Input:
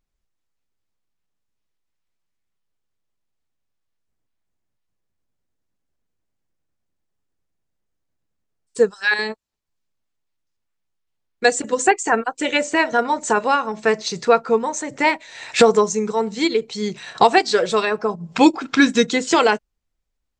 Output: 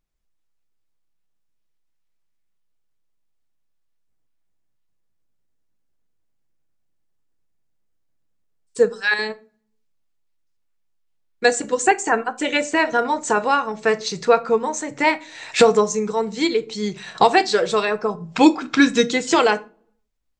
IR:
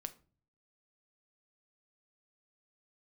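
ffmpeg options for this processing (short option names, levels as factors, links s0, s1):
-filter_complex "[0:a]asplit=2[s0][s1];[1:a]atrim=start_sample=2205[s2];[s1][s2]afir=irnorm=-1:irlink=0,volume=3.55[s3];[s0][s3]amix=inputs=2:normalize=0,volume=0.266"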